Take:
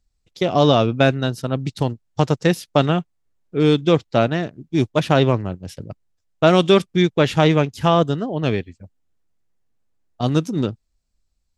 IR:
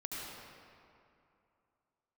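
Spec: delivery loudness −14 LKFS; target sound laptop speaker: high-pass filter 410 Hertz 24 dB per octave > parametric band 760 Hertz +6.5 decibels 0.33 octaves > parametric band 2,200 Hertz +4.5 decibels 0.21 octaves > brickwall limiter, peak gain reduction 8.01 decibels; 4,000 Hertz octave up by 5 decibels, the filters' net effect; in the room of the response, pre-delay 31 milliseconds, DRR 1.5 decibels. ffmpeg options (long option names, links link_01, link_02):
-filter_complex "[0:a]equalizer=frequency=4000:width_type=o:gain=6,asplit=2[link_01][link_02];[1:a]atrim=start_sample=2205,adelay=31[link_03];[link_02][link_03]afir=irnorm=-1:irlink=0,volume=-3dB[link_04];[link_01][link_04]amix=inputs=2:normalize=0,highpass=frequency=410:width=0.5412,highpass=frequency=410:width=1.3066,equalizer=frequency=760:width_type=o:width=0.33:gain=6.5,equalizer=frequency=2200:width_type=o:width=0.21:gain=4.5,volume=6dB,alimiter=limit=-1dB:level=0:latency=1"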